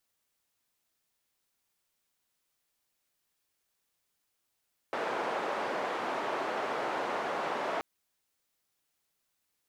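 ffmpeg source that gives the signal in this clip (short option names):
-f lavfi -i "anoisesrc=c=white:d=2.88:r=44100:seed=1,highpass=f=420,lowpass=f=930,volume=-13dB"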